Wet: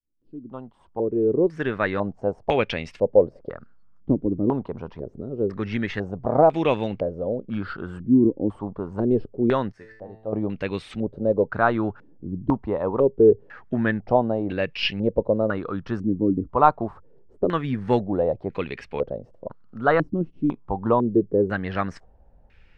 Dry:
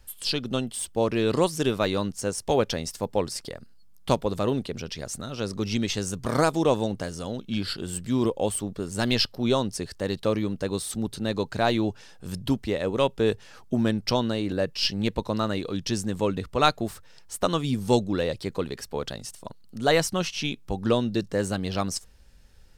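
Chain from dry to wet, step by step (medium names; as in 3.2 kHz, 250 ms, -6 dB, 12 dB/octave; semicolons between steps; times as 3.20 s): fade-in on the opening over 2.11 s; 9.72–10.33 s: feedback comb 110 Hz, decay 0.67 s, harmonics all, mix 90%; step-sequenced low-pass 2 Hz 300–2400 Hz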